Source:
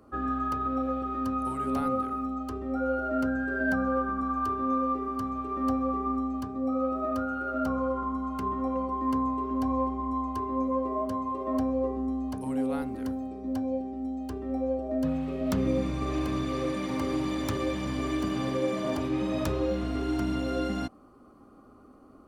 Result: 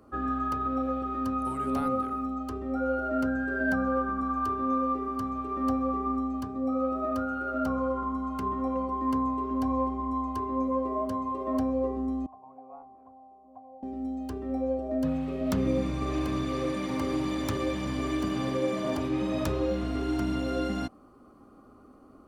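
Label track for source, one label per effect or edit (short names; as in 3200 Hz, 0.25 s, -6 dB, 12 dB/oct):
12.260000	13.830000	vocal tract filter a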